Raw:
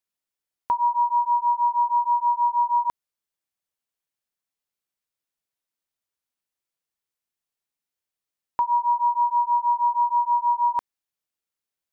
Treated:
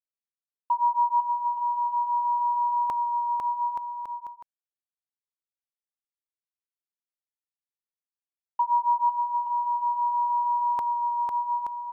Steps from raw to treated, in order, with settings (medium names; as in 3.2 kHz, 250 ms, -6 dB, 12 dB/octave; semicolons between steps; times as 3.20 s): expander -23 dBFS; bouncing-ball echo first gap 500 ms, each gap 0.75×, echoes 5; trim -1.5 dB